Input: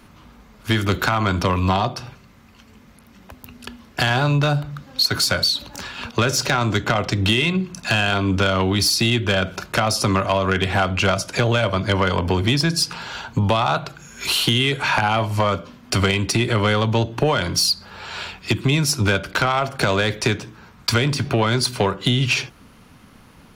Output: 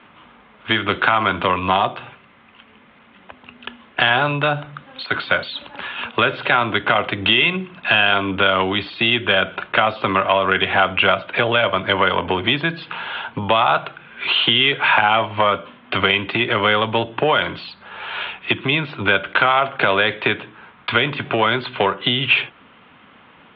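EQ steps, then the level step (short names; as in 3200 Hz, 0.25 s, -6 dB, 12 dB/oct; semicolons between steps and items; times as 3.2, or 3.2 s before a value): HPF 650 Hz 6 dB/oct; steep low-pass 3500 Hz 72 dB/oct; +6.0 dB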